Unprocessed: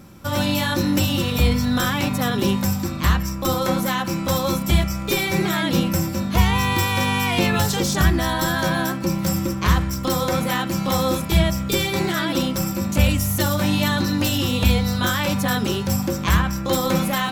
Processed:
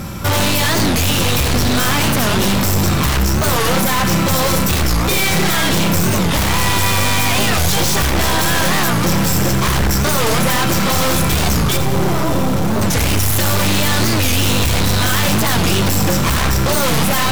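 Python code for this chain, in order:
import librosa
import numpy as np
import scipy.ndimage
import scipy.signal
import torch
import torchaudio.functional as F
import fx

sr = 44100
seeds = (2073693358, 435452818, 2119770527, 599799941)

p1 = fx.peak_eq(x, sr, hz=290.0, db=-7.5, octaves=1.7)
p2 = fx.cheby_harmonics(p1, sr, harmonics=(4, 5), levels_db=(-8, -19), full_scale_db=-6.0)
p3 = fx.fold_sine(p2, sr, drive_db=16, ceiling_db=-6.5)
p4 = p2 + (p3 * 10.0 ** (-5.5 / 20.0))
p5 = fx.savgol(p4, sr, points=65, at=(11.76, 12.82), fade=0.02)
p6 = p5 + fx.echo_diffused(p5, sr, ms=639, feedback_pct=78, wet_db=-13.0, dry=0)
p7 = 10.0 ** (-14.0 / 20.0) * np.tanh(p6 / 10.0 ** (-14.0 / 20.0))
p8 = fx.low_shelf(p7, sr, hz=480.0, db=3.0)
p9 = p8 + 10.0 ** (-11.5 / 20.0) * np.pad(p8, (int(84 * sr / 1000.0), 0))[:len(p8)]
y = fx.record_warp(p9, sr, rpm=45.0, depth_cents=250.0)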